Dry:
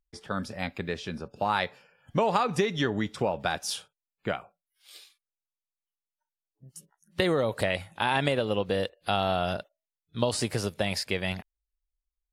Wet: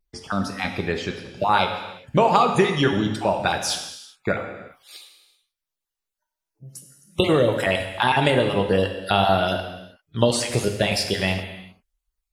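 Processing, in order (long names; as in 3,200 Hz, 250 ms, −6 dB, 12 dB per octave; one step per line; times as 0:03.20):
time-frequency cells dropped at random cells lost 28%
pitch vibrato 0.66 Hz 36 cents
reverb whose tail is shaped and stops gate 420 ms falling, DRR 4 dB
level +7 dB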